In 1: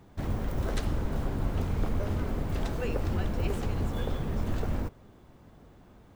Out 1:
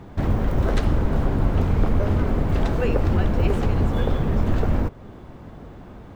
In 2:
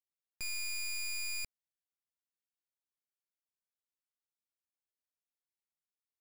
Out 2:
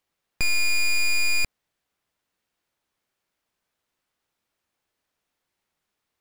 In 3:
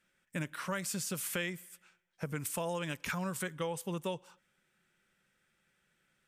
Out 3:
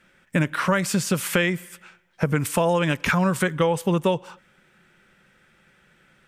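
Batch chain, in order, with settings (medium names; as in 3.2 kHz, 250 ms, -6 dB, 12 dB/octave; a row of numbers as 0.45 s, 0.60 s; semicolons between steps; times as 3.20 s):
treble shelf 4.5 kHz -12 dB; in parallel at -0.5 dB: compression, threshold -40 dBFS; on the sum: normalise loudness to -23 LUFS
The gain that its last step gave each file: +8.0 dB, +15.0 dB, +13.0 dB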